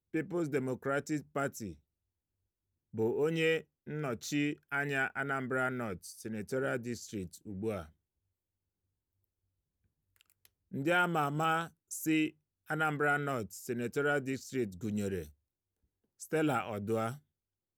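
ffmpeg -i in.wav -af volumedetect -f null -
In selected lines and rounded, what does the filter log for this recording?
mean_volume: -36.0 dB
max_volume: -18.3 dB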